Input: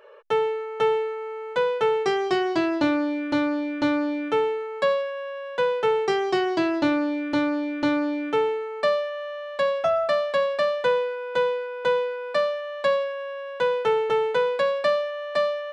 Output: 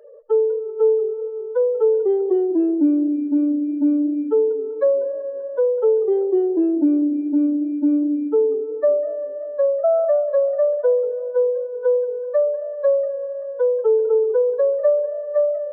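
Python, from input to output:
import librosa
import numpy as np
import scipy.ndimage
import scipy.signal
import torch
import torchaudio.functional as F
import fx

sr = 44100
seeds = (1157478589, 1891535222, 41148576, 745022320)

y = fx.spec_expand(x, sr, power=3.5)
y = fx.echo_warbled(y, sr, ms=193, feedback_pct=60, rate_hz=2.8, cents=171, wet_db=-19)
y = F.gain(torch.from_numpy(y), 5.5).numpy()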